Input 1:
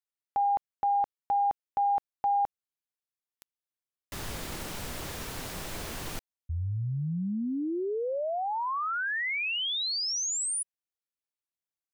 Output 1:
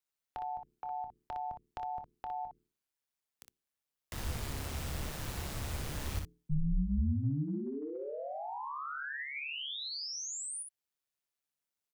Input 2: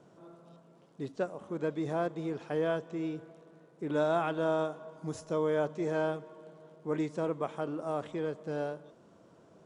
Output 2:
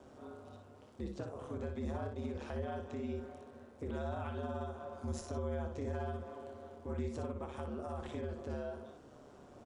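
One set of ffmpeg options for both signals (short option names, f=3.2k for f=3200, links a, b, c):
-filter_complex "[0:a]bandreject=f=60:t=h:w=6,bandreject=f=120:t=h:w=6,bandreject=f=180:t=h:w=6,bandreject=f=240:t=h:w=6,bandreject=f=300:t=h:w=6,bandreject=f=360:t=h:w=6,bandreject=f=420:t=h:w=6,aeval=exprs='val(0)*sin(2*PI*71*n/s)':c=same,acrossover=split=160[a][b];[b]acompressor=threshold=-44dB:ratio=6:attack=1.6:release=213:knee=2.83:detection=peak[c];[a][c]amix=inputs=2:normalize=0,asplit=2[d][e];[e]aecho=0:1:26|60:0.224|0.501[f];[d][f]amix=inputs=2:normalize=0,volume=5dB"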